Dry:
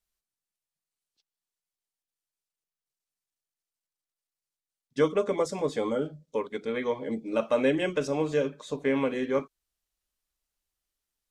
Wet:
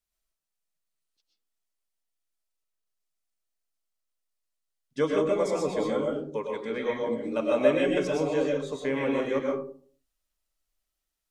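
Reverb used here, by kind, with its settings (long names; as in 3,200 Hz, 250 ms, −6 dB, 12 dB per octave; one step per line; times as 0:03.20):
comb and all-pass reverb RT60 0.49 s, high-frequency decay 0.35×, pre-delay 80 ms, DRR −1.5 dB
level −2.5 dB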